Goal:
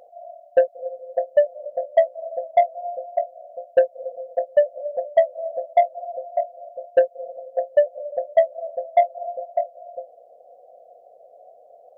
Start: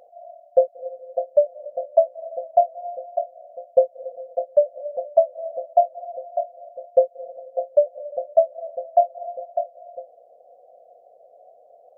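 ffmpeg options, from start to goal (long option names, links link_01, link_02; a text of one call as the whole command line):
ffmpeg -i in.wav -af "acontrast=69,volume=-4.5dB" out.wav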